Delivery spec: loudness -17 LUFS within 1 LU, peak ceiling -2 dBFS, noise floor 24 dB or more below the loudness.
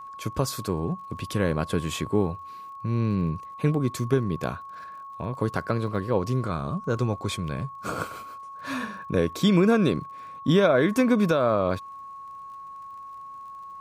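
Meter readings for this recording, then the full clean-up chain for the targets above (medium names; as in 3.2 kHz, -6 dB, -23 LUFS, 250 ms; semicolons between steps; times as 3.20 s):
tick rate 41 per s; steady tone 1.1 kHz; tone level -38 dBFS; loudness -26.0 LUFS; peak level -9.5 dBFS; loudness target -17.0 LUFS
-> de-click; band-stop 1.1 kHz, Q 30; trim +9 dB; peak limiter -2 dBFS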